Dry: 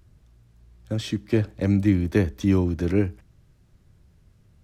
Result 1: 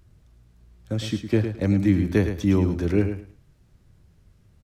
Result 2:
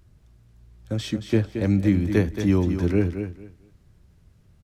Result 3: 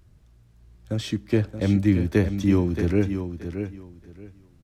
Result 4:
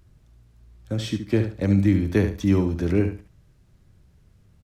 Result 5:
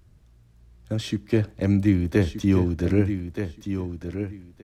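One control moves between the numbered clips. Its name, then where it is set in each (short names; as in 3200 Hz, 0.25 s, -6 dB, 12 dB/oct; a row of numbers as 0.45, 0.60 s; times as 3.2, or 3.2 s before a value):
feedback echo, time: 108, 225, 625, 71, 1225 ms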